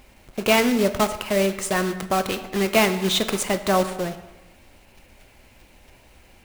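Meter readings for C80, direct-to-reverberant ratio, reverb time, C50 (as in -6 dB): 13.0 dB, 8.5 dB, 1.1 s, 11.5 dB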